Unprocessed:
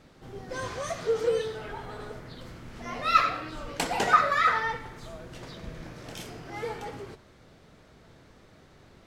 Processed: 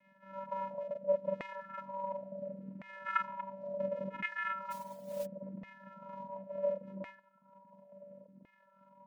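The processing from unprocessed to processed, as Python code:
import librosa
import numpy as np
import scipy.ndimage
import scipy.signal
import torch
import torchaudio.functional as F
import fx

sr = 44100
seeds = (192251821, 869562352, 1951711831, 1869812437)

y = scipy.ndimage.median_filter(x, 41, mode='constant')
y = fx.low_shelf(y, sr, hz=330.0, db=-8.5)
y = fx.echo_multitap(y, sr, ms=(43, 48, 93, 236), db=(-3.0, -5.0, -10.0, -11.5))
y = fx.vocoder(y, sr, bands=4, carrier='square', carrier_hz=193.0)
y = fx.filter_lfo_bandpass(y, sr, shape='saw_down', hz=0.71, low_hz=370.0, high_hz=2100.0, q=3.9)
y = fx.mod_noise(y, sr, seeds[0], snr_db=18, at=(4.7, 5.25), fade=0.02)
y = fx.dynamic_eq(y, sr, hz=720.0, q=0.89, threshold_db=-51.0, ratio=4.0, max_db=-6)
y = fx.rider(y, sr, range_db=4, speed_s=0.5)
y = fx.dereverb_blind(y, sr, rt60_s=0.74)
y = y * 10.0 ** (12.5 / 20.0)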